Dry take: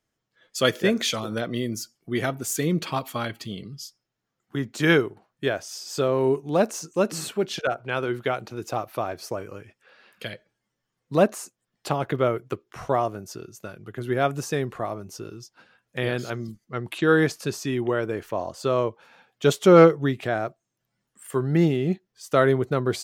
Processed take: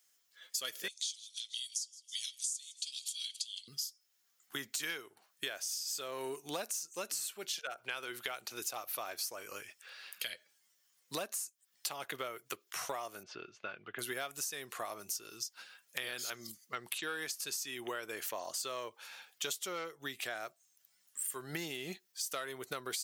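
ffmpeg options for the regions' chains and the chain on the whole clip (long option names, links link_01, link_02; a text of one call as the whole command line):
ffmpeg -i in.wav -filter_complex "[0:a]asettb=1/sr,asplit=3[link_01][link_02][link_03];[link_01]atrim=end=0.884[link_04];[link_02]atrim=start=0.88:end=3.68,asetpts=PTS-STARTPTS,afade=type=in:duration=0.004:curve=qsin,afade=type=out:start_time=2.796:duration=0.004:curve=qsin,asuperpass=centerf=5700:order=8:qfactor=0.92,aecho=1:1:159|318|477:0.0708|0.034|0.0163,atrim=end_sample=123480[link_05];[link_03]atrim=start=3.676[link_06];[link_04][link_05]acrossfade=duration=0.004:curve1=hsin:curve2=qsin[link_07];[link_07][link_06]acrossfade=duration=0.004:curve1=qsin:curve2=hsin,asettb=1/sr,asplit=3[link_08][link_09][link_10];[link_08]atrim=end=13.234[link_11];[link_09]atrim=start=13.23:end=13.99,asetpts=PTS-STARTPTS,afade=type=in:duration=0.004:curve=qsin,afade=type=out:start_time=0.756:duration=0.004:curve=qsin,lowpass=frequency=2900:width=0.5412,lowpass=frequency=2900:width=1.3066,bandreject=frequency=1900:width=16[link_12];[link_10]atrim=start=13.986[link_13];[link_11][link_12]acrossfade=duration=0.004:curve1=hsin:curve2=qsin[link_14];[link_14][link_13]acrossfade=duration=0.004:curve1=qsin:curve2=hsin,acontrast=35,aderivative,acompressor=threshold=-45dB:ratio=12,volume=9dB" out.wav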